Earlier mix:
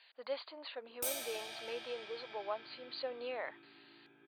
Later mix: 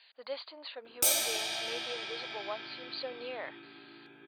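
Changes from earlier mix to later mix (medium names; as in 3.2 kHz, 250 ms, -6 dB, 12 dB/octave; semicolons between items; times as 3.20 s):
background +9.0 dB; master: add peaking EQ 5.8 kHz +6 dB 1.6 oct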